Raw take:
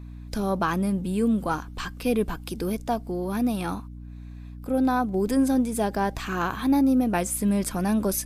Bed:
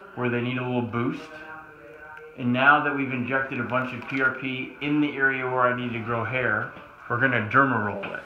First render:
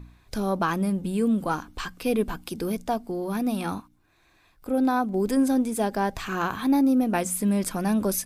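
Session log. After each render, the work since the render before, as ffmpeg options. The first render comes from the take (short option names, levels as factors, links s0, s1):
-af "bandreject=f=60:t=h:w=4,bandreject=f=120:t=h:w=4,bandreject=f=180:t=h:w=4,bandreject=f=240:t=h:w=4,bandreject=f=300:t=h:w=4"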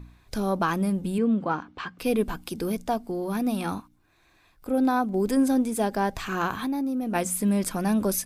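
-filter_complex "[0:a]asettb=1/sr,asplit=3[s0][s1][s2];[s0]atrim=end=1.184[s3];[s1]atrim=start=1.18:end=1.99,asetpts=PTS-STARTPTS,afade=t=in:d=0.004:c=qsin,afade=t=out:st=0.806:d=0.004:c=qsin,highpass=120,lowpass=2900[s4];[s2]atrim=start=1.986[s5];[s3][s4]acrossfade=d=0.004:c1=hsin:c2=qsin[s6];[s6][s5]acrossfade=d=0.004:c1=qsin:c2=hsin,asplit=3[s7][s8][s9];[s7]afade=t=out:st=6.61:d=0.02[s10];[s8]acompressor=threshold=0.0562:ratio=6:attack=3.2:release=140:knee=1:detection=peak,afade=t=in:st=6.61:d=0.02,afade=t=out:st=7.14:d=0.02[s11];[s9]afade=t=in:st=7.14:d=0.02[s12];[s10][s11][s12]amix=inputs=3:normalize=0"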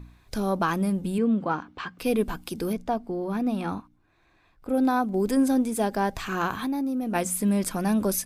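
-filter_complex "[0:a]asettb=1/sr,asplit=3[s0][s1][s2];[s0]atrim=end=2.734[s3];[s1]atrim=start=2.73:end=4.69,asetpts=PTS-STARTPTS,afade=t=in:d=0.004:c=qsin,afade=t=out:st=1.956:d=0.004:c=qsin,lowpass=f=2300:p=1[s4];[s2]atrim=start=4.686[s5];[s3][s4]acrossfade=d=0.004:c1=hsin:c2=qsin[s6];[s6][s5]acrossfade=d=0.004:c1=qsin:c2=hsin"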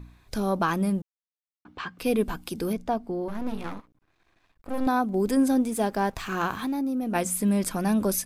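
-filter_complex "[0:a]asettb=1/sr,asplit=3[s0][s1][s2];[s0]atrim=end=3.284[s3];[s1]atrim=start=3.28:end=4.87,asetpts=PTS-STARTPTS,afade=t=in:d=0.004:c=qsin,afade=t=out:st=1.586:d=0.004:c=qsin,aeval=exprs='max(val(0),0)':c=same[s4];[s2]atrim=start=4.866[s5];[s3][s4]acrossfade=d=0.004:c1=hsin:c2=qsin[s6];[s6][s5]acrossfade=d=0.004:c1=qsin:c2=hsin,asettb=1/sr,asplit=3[s7][s8][s9];[s7]atrim=end=5.654[s10];[s8]atrim=start=5.65:end=6.78,asetpts=PTS-STARTPTS,afade=t=in:d=0.004:c=qsin,afade=t=out:st=1.126:d=0.004:c=qsin,aeval=exprs='sgn(val(0))*max(abs(val(0))-0.00335,0)':c=same[s11];[s9]atrim=start=6.776[s12];[s10][s11]acrossfade=d=0.004:c1=hsin:c2=qsin[s13];[s13][s12]acrossfade=d=0.004:c1=qsin:c2=hsin,asplit=3[s14][s15][s16];[s14]atrim=end=1.02,asetpts=PTS-STARTPTS,afade=t=out:st=1.016:d=0.004:c=hsin[s17];[s15]atrim=start=1.02:end=1.65,asetpts=PTS-STARTPTS,volume=0[s18];[s16]atrim=start=1.65,asetpts=PTS-STARTPTS,afade=t=in:d=0.004:c=hsin[s19];[s17][s18][s19]concat=n=3:v=0:a=1"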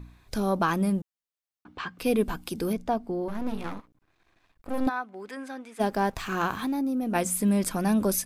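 -filter_complex "[0:a]asplit=3[s0][s1][s2];[s0]afade=t=out:st=4.88:d=0.02[s3];[s1]bandpass=f=1800:t=q:w=1.3,afade=t=in:st=4.88:d=0.02,afade=t=out:st=5.79:d=0.02[s4];[s2]afade=t=in:st=5.79:d=0.02[s5];[s3][s4][s5]amix=inputs=3:normalize=0"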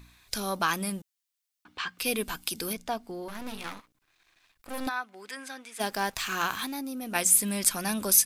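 -af "tiltshelf=f=1300:g=-9.5"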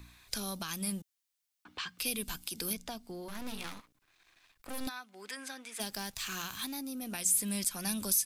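-filter_complex "[0:a]alimiter=limit=0.133:level=0:latency=1:release=200,acrossover=split=200|3000[s0][s1][s2];[s1]acompressor=threshold=0.00708:ratio=5[s3];[s0][s3][s2]amix=inputs=3:normalize=0"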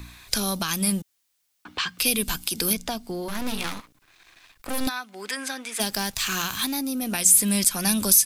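-af "volume=3.98"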